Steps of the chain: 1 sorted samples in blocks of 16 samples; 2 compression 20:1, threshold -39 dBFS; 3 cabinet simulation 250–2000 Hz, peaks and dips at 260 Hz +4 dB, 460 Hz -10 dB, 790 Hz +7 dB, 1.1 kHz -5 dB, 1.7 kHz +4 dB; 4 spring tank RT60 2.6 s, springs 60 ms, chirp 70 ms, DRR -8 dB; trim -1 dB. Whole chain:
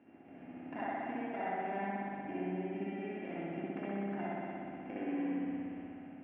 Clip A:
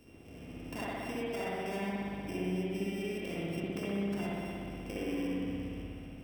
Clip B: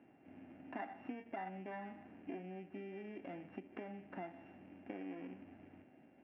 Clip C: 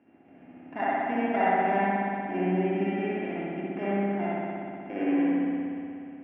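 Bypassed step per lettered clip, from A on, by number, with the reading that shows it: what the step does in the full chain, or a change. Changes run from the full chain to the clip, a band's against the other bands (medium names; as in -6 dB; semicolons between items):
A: 3, loudness change +2.5 LU; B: 4, crest factor change +4.0 dB; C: 2, mean gain reduction 5.5 dB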